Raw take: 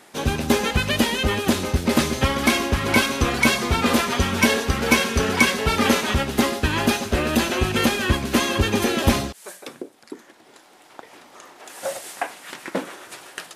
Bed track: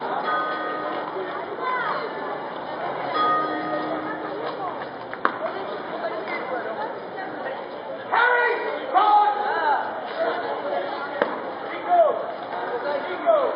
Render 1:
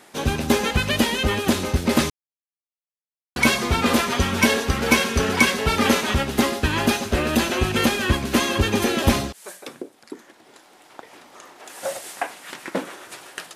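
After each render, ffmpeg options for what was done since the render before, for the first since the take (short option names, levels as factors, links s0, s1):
-filter_complex "[0:a]asplit=3[s0][s1][s2];[s0]atrim=end=2.1,asetpts=PTS-STARTPTS,afade=t=out:st=2.096:d=0.004:c=hsin[s3];[s1]atrim=start=2.1:end=3.36,asetpts=PTS-STARTPTS,volume=0[s4];[s2]atrim=start=3.36,asetpts=PTS-STARTPTS,afade=t=in:d=0.004:c=hsin[s5];[s3][s4][s5]concat=n=3:v=0:a=1"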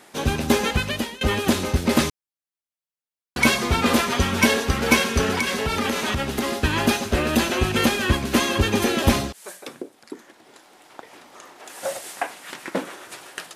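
-filter_complex "[0:a]asettb=1/sr,asplit=3[s0][s1][s2];[s0]atrim=end=5.334[s3];[s1]atrim=start=5.33:end=6.58,asetpts=PTS-STARTPTS,afade=t=in:d=0.004:c=qsin,afade=t=out:st=1.246:d=0.004:c=qsin,acompressor=threshold=0.112:ratio=6:attack=3.2:release=140:knee=1:detection=peak[s4];[s2]atrim=start=6.576[s5];[s3][s4]acrossfade=d=0.004:c1=hsin:c2=qsin[s6];[s6][s5]acrossfade=d=0.004:c1=qsin:c2=hsin,asplit=2[s7][s8];[s7]atrim=end=1.21,asetpts=PTS-STARTPTS,afade=t=out:st=0.69:d=0.52:silence=0.0944061[s9];[s8]atrim=start=1.21,asetpts=PTS-STARTPTS,afade=t=in:d=0.004:c=hsin:silence=0.0944061[s10];[s9][s10]concat=n=2:v=0:a=1"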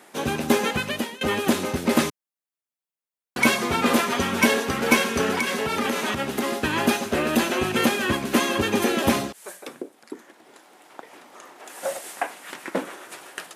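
-af "highpass=170,equalizer=f=4600:t=o:w=1.3:g=-4"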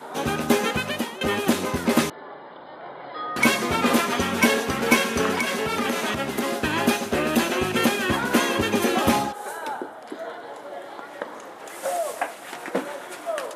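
-filter_complex "[1:a]volume=0.299[s0];[0:a][s0]amix=inputs=2:normalize=0"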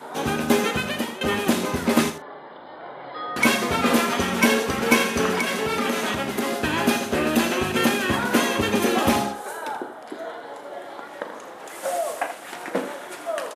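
-filter_complex "[0:a]asplit=2[s0][s1];[s1]adelay=39,volume=0.237[s2];[s0][s2]amix=inputs=2:normalize=0,aecho=1:1:82:0.282"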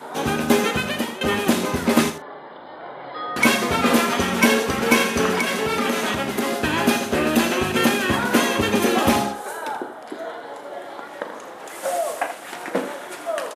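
-af "volume=1.26,alimiter=limit=0.794:level=0:latency=1"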